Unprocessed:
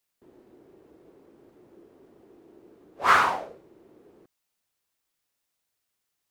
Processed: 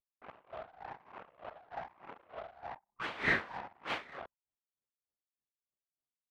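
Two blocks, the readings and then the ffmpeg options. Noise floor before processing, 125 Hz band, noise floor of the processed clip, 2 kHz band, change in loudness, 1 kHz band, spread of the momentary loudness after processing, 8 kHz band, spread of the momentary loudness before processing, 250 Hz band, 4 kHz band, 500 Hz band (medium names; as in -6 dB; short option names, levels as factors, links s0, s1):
-81 dBFS, 0.0 dB, under -85 dBFS, -6.5 dB, -17.0 dB, -15.5 dB, 22 LU, under -15 dB, 11 LU, -2.0 dB, -7.5 dB, -6.0 dB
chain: -filter_complex "[0:a]afftfilt=real='re*pow(10,11/40*sin(2*PI*(0.58*log(max(b,1)*sr/1024/100)/log(2)-(1.1)*(pts-256)/sr)))':imag='im*pow(10,11/40*sin(2*PI*(0.58*log(max(b,1)*sr/1024/100)/log(2)-(1.1)*(pts-256)/sr)))':win_size=1024:overlap=0.75,acrossover=split=3000[s0][s1];[s0]crystalizer=i=9.5:c=0[s2];[s2][s1]amix=inputs=2:normalize=0,asplit=2[s3][s4];[s4]adelay=816.3,volume=0.0398,highshelf=f=4000:g=-18.4[s5];[s3][s5]amix=inputs=2:normalize=0,aeval=exprs='abs(val(0))':c=same,areverse,acompressor=threshold=0.0224:ratio=6,areverse,asplit=2[s6][s7];[s7]highpass=f=720:p=1,volume=5.01,asoftclip=type=tanh:threshold=0.0708[s8];[s6][s8]amix=inputs=2:normalize=0,lowpass=f=2000:p=1,volume=0.501,anlmdn=0.00158,highpass=f=120:p=1,acrossover=split=2900[s9][s10];[s10]acompressor=threshold=0.002:ratio=4:attack=1:release=60[s11];[s9][s11]amix=inputs=2:normalize=0,aeval=exprs='val(0)*pow(10,-20*(0.5-0.5*cos(2*PI*3.3*n/s))/20)':c=same,volume=2.99"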